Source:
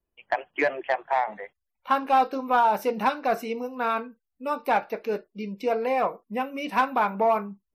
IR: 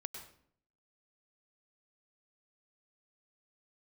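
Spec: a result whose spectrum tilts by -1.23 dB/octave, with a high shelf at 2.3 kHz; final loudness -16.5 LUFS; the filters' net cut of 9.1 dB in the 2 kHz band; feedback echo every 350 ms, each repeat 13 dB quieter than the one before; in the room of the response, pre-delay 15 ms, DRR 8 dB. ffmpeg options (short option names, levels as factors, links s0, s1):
-filter_complex "[0:a]equalizer=f=2000:t=o:g=-9,highshelf=f=2300:g=-7.5,aecho=1:1:350|700|1050:0.224|0.0493|0.0108,asplit=2[s0][s1];[1:a]atrim=start_sample=2205,adelay=15[s2];[s1][s2]afir=irnorm=-1:irlink=0,volume=0.531[s3];[s0][s3]amix=inputs=2:normalize=0,volume=3.35"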